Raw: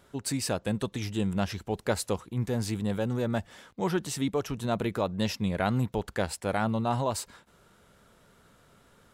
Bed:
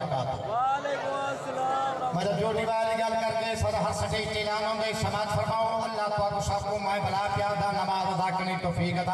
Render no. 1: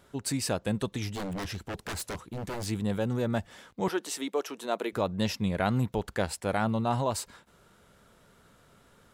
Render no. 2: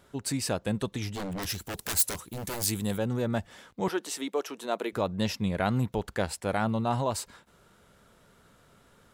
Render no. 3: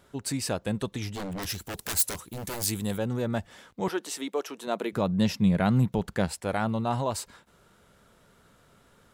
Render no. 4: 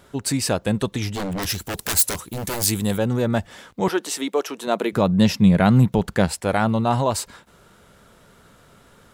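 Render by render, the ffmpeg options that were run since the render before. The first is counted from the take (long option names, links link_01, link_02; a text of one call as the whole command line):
ffmpeg -i in.wav -filter_complex "[0:a]asplit=3[link_01][link_02][link_03];[link_01]afade=type=out:start_time=1.08:duration=0.02[link_04];[link_02]aeval=exprs='0.0335*(abs(mod(val(0)/0.0335+3,4)-2)-1)':channel_layout=same,afade=type=in:start_time=1.08:duration=0.02,afade=type=out:start_time=2.65:duration=0.02[link_05];[link_03]afade=type=in:start_time=2.65:duration=0.02[link_06];[link_04][link_05][link_06]amix=inputs=3:normalize=0,asettb=1/sr,asplit=3[link_07][link_08][link_09];[link_07]atrim=end=3.884[link_10];[link_08]atrim=start=3.88:end=4.93,asetpts=PTS-STARTPTS,afade=type=in:duration=0.004:curve=qsin,afade=type=out:start_time=1.046:duration=0.004:curve=qsin,highpass=frequency=310:width=0.5412,highpass=frequency=310:width=1.3066[link_11];[link_09]atrim=start=4.926[link_12];[link_10][link_11]acrossfade=duration=0.004:curve1=hsin:curve2=qsin[link_13];[link_13][link_12]acrossfade=duration=0.004:curve1=qsin:curve2=hsin" out.wav
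ffmpeg -i in.wav -filter_complex "[0:a]asplit=3[link_01][link_02][link_03];[link_01]afade=type=out:start_time=1.42:duration=0.02[link_04];[link_02]aemphasis=mode=production:type=75fm,afade=type=in:start_time=1.42:duration=0.02,afade=type=out:start_time=2.96:duration=0.02[link_05];[link_03]afade=type=in:start_time=2.96:duration=0.02[link_06];[link_04][link_05][link_06]amix=inputs=3:normalize=0" out.wav
ffmpeg -i in.wav -filter_complex "[0:a]asettb=1/sr,asplit=3[link_01][link_02][link_03];[link_01]atrim=end=4.674[link_04];[link_02]atrim=start=4.67:end=6.28,asetpts=PTS-STARTPTS,afade=type=in:duration=0.004:curve=qsin,afade=type=out:start_time=1.606:duration=0.004:curve=qsin,equalizer=frequency=170:width=1.5:gain=9.5[link_05];[link_03]atrim=start=6.276[link_06];[link_04][link_05]acrossfade=duration=0.004:curve1=hsin:curve2=qsin[link_07];[link_07][link_06]acrossfade=duration=0.004:curve1=qsin:curve2=hsin" out.wav
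ffmpeg -i in.wav -af "volume=8dB,alimiter=limit=-2dB:level=0:latency=1" out.wav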